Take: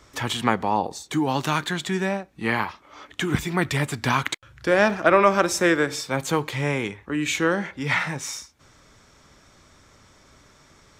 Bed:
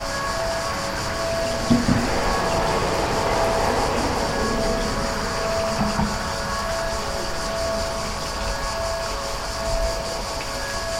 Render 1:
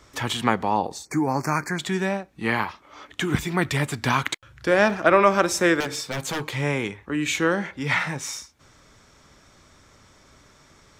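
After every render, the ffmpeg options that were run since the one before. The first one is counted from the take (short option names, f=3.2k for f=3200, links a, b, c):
-filter_complex "[0:a]asettb=1/sr,asplit=3[a][b][c];[a]atrim=end=1.054[d];[b]atrim=start=1.05:end=1.79,asetpts=PTS-STARTPTS,afade=t=in:d=0.004:c=qsin,afade=t=out:st=0.736:d=0.004:c=qsin,asuperstop=centerf=3300:order=12:qfactor=1.6[e];[c]atrim=start=1.786[f];[d][e]acrossfade=d=0.004:c1=hsin:c2=qsin[g];[g][f]acrossfade=d=0.004:c1=qsin:c2=hsin,asettb=1/sr,asplit=3[h][i][j];[h]atrim=end=5.804[k];[i]atrim=start=5.8:end=6.45,asetpts=PTS-STARTPTS,afade=t=in:d=0.004:c=qsin,afade=t=out:st=0.646:d=0.004:c=qsin,aeval=exprs='0.0841*(abs(mod(val(0)/0.0841+3,4)-2)-1)':c=same[l];[j]atrim=start=6.446[m];[k][l]acrossfade=d=0.004:c1=hsin:c2=qsin[n];[n][m]acrossfade=d=0.004:c1=qsin:c2=hsin"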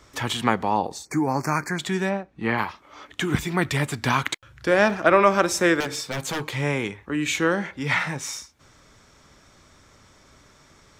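-filter_complex "[0:a]asplit=3[a][b][c];[a]afade=t=out:st=2.09:d=0.02[d];[b]aemphasis=mode=reproduction:type=75fm,afade=t=in:st=2.09:d=0.02,afade=t=out:st=2.57:d=0.02[e];[c]afade=t=in:st=2.57:d=0.02[f];[d][e][f]amix=inputs=3:normalize=0"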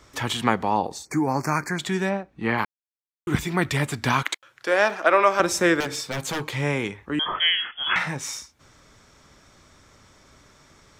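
-filter_complex "[0:a]asettb=1/sr,asplit=3[a][b][c];[a]atrim=end=4.234[d];[b]atrim=start=4.23:end=5.4,asetpts=PTS-STARTPTS,afade=t=in:d=0.004:c=qsin,afade=t=out:st=1.166:d=0.004:c=qsin,highpass=450[e];[c]atrim=start=5.396[f];[d][e]acrossfade=d=0.004:c1=hsin:c2=qsin[g];[g][f]acrossfade=d=0.004:c1=qsin:c2=hsin,asettb=1/sr,asplit=3[h][i][j];[h]atrim=end=7.194[k];[i]atrim=start=7.19:end=7.96,asetpts=PTS-STARTPTS,afade=t=in:d=0.004:c=qsin,afade=t=out:st=0.766:d=0.004:c=qsin,lowpass=f=3k:t=q:w=0.5098,lowpass=f=3k:t=q:w=0.6013,lowpass=f=3k:t=q:w=0.9,lowpass=f=3k:t=q:w=2.563,afreqshift=-3500[l];[j]atrim=start=7.956[m];[k][l]acrossfade=d=0.004:c1=hsin:c2=qsin[n];[n][m]acrossfade=d=0.004:c1=qsin:c2=hsin,asplit=3[o][p][q];[o]atrim=end=2.65,asetpts=PTS-STARTPTS,afade=t=out:st=2.646:d=0.004:c=hsin[r];[p]atrim=start=2.65:end=3.27,asetpts=PTS-STARTPTS,volume=0[s];[q]atrim=start=3.27,asetpts=PTS-STARTPTS,afade=t=in:d=0.004:c=hsin[t];[r][s][t]concat=n=3:v=0:a=1"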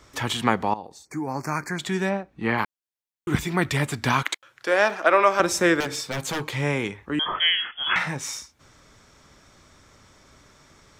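-filter_complex "[0:a]asplit=2[a][b];[a]atrim=end=0.74,asetpts=PTS-STARTPTS,afade=t=out:st=0.736:d=0.004:c=hsin:silence=0.16788[c];[b]atrim=start=0.74,asetpts=PTS-STARTPTS,afade=t=in:d=1.32:silence=0.16788[d];[c][d]concat=n=2:v=0:a=1"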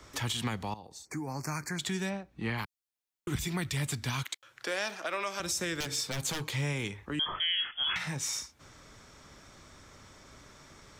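-filter_complex "[0:a]acrossover=split=140|3000[a][b][c];[b]acompressor=threshold=-41dB:ratio=2.5[d];[a][d][c]amix=inputs=3:normalize=0,alimiter=limit=-22.5dB:level=0:latency=1:release=82"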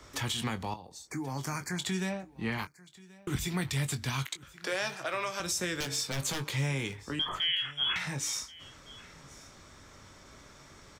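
-filter_complex "[0:a]asplit=2[a][b];[b]adelay=22,volume=-10dB[c];[a][c]amix=inputs=2:normalize=0,aecho=1:1:1082:0.0841"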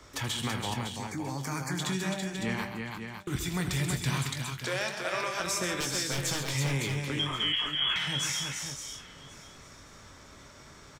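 -af "aecho=1:1:79|133|331|557:0.2|0.355|0.596|0.422"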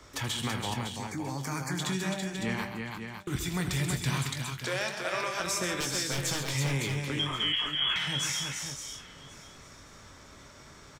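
-af anull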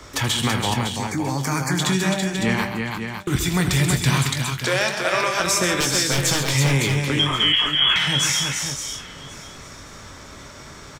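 -af "volume=11dB"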